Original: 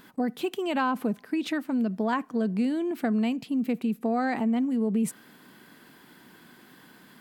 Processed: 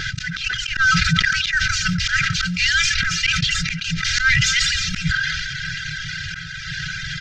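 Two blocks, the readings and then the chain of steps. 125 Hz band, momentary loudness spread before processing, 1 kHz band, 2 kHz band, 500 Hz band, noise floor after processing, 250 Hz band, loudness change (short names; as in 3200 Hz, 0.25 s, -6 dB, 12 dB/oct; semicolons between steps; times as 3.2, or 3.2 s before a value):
+16.0 dB, 4 LU, +2.5 dB, +21.5 dB, under -25 dB, -31 dBFS, -5.0 dB, +8.5 dB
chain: CVSD 32 kbps; FFT band-reject 180–1300 Hz; reverb removal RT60 0.9 s; low shelf 250 Hz +10.5 dB; comb 2.5 ms, depth 81%; dynamic EQ 1100 Hz, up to +4 dB, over -56 dBFS, Q 3; auto swell 0.303 s; band-limited delay 0.256 s, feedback 48%, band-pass 850 Hz, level -15.5 dB; maximiser +33.5 dB; sustainer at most 23 dB/s; gain -6.5 dB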